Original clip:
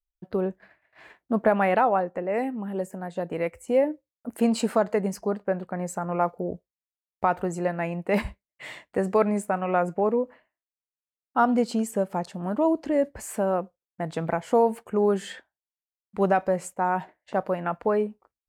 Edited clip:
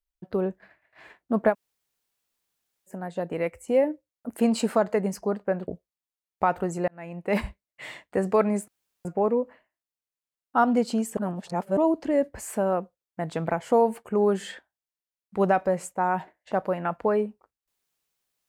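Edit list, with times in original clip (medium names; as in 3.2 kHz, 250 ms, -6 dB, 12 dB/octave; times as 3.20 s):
1.52–2.89 s: room tone, crossfade 0.06 s
5.68–6.49 s: delete
7.69–8.21 s: fade in
9.49–9.86 s: room tone
11.98–12.58 s: reverse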